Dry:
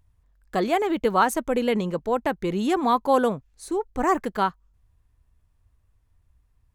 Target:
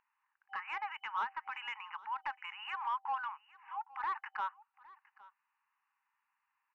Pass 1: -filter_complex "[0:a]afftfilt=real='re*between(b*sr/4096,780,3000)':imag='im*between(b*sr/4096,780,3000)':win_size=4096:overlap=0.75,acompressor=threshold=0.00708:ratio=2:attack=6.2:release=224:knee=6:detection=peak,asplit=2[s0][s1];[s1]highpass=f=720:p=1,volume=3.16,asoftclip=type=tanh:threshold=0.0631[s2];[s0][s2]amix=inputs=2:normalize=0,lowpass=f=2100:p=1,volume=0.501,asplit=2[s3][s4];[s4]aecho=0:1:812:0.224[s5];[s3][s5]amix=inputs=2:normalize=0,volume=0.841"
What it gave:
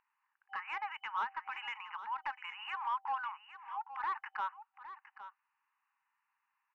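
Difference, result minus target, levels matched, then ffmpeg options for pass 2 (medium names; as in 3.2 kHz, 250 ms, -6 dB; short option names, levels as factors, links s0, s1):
echo-to-direct +8.5 dB
-filter_complex "[0:a]afftfilt=real='re*between(b*sr/4096,780,3000)':imag='im*between(b*sr/4096,780,3000)':win_size=4096:overlap=0.75,acompressor=threshold=0.00708:ratio=2:attack=6.2:release=224:knee=6:detection=peak,asplit=2[s0][s1];[s1]highpass=f=720:p=1,volume=3.16,asoftclip=type=tanh:threshold=0.0631[s2];[s0][s2]amix=inputs=2:normalize=0,lowpass=f=2100:p=1,volume=0.501,asplit=2[s3][s4];[s4]aecho=0:1:812:0.0841[s5];[s3][s5]amix=inputs=2:normalize=0,volume=0.841"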